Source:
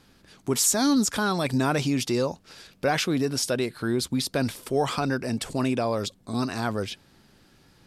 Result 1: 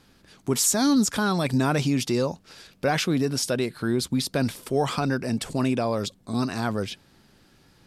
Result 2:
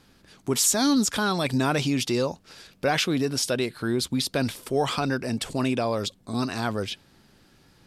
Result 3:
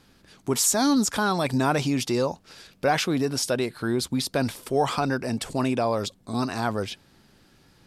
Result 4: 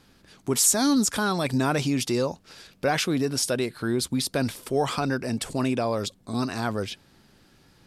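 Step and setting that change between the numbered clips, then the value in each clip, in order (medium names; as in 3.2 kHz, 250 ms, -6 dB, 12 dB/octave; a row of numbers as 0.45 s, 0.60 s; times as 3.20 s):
dynamic bell, frequency: 170 Hz, 3.2 kHz, 850 Hz, 9.7 kHz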